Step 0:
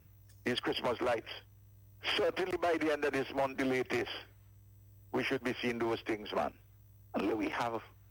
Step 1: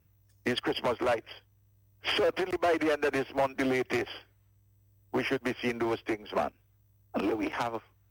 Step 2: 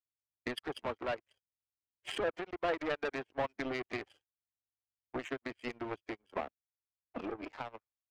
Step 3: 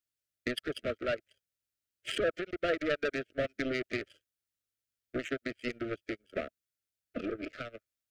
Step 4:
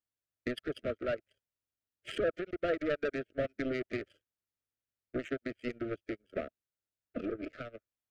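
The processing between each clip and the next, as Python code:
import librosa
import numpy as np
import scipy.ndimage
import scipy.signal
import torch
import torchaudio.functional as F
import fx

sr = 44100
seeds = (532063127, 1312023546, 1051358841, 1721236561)

y1 = fx.upward_expand(x, sr, threshold_db=-52.0, expansion=1.5)
y1 = y1 * 10.0 ** (5.5 / 20.0)
y2 = fx.spec_topn(y1, sr, count=64)
y2 = fx.power_curve(y2, sr, exponent=2.0)
y2 = y2 * 10.0 ** (-2.0 / 20.0)
y3 = scipy.signal.sosfilt(scipy.signal.ellip(3, 1.0, 50, [640.0, 1300.0], 'bandstop', fs=sr, output='sos'), y2)
y3 = y3 * 10.0 ** (5.0 / 20.0)
y4 = fx.high_shelf(y3, sr, hz=2000.0, db=-10.0)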